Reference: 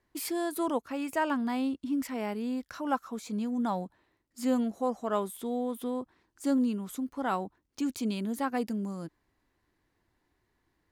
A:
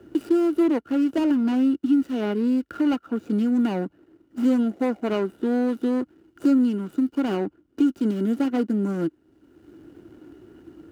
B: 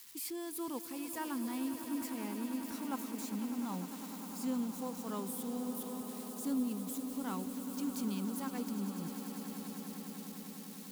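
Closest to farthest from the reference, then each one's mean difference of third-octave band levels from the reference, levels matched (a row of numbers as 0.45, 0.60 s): A, B; 6.0, 11.0 dB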